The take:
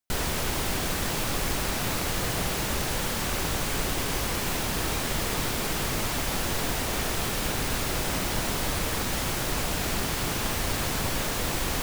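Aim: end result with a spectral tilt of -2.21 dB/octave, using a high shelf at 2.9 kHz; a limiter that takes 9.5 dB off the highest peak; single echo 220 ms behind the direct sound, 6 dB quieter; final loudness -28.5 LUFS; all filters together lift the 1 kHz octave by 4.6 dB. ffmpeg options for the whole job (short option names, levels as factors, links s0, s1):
-af "equalizer=f=1000:t=o:g=5,highshelf=f=2900:g=5.5,alimiter=limit=0.0891:level=0:latency=1,aecho=1:1:220:0.501,volume=0.944"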